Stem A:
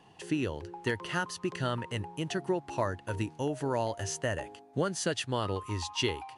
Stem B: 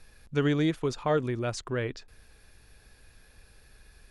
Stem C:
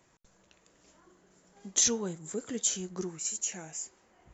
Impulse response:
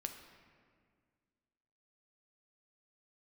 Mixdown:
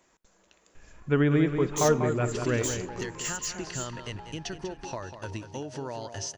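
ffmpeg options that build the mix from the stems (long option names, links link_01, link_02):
-filter_complex "[0:a]lowpass=frequency=5500:width_type=q:width=3.3,acompressor=threshold=-34dB:ratio=4,adelay=2150,volume=0.5dB,asplit=2[link_01][link_02];[link_02]volume=-10dB[link_03];[1:a]lowpass=frequency=2600:width=0.5412,lowpass=frequency=2600:width=1.3066,adelay=750,volume=0dB,asplit=3[link_04][link_05][link_06];[link_05]volume=-6.5dB[link_07];[link_06]volume=-5dB[link_08];[2:a]equalizer=frequency=120:width=1.7:gain=-12.5,asoftclip=type=tanh:threshold=-30dB,volume=0.5dB,asplit=2[link_09][link_10];[link_10]volume=-14.5dB[link_11];[3:a]atrim=start_sample=2205[link_12];[link_07][link_11]amix=inputs=2:normalize=0[link_13];[link_13][link_12]afir=irnorm=-1:irlink=0[link_14];[link_03][link_08]amix=inputs=2:normalize=0,aecho=0:1:194|388|582|776|970:1|0.36|0.13|0.0467|0.0168[link_15];[link_01][link_04][link_09][link_14][link_15]amix=inputs=5:normalize=0"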